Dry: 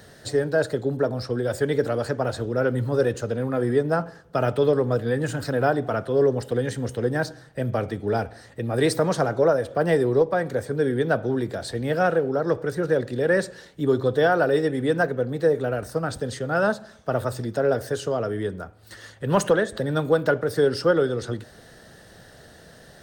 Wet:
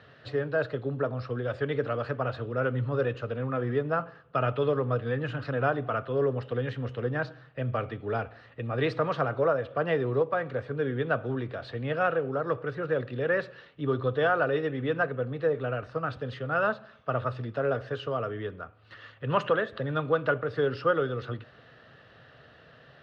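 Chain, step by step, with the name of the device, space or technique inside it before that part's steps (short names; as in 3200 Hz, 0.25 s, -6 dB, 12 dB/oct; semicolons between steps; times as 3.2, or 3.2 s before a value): guitar cabinet (speaker cabinet 89–3600 Hz, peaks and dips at 130 Hz +5 dB, 190 Hz -8 dB, 350 Hz -5 dB, 840 Hz -3 dB, 1200 Hz +9 dB, 2700 Hz +8 dB); gain -5.5 dB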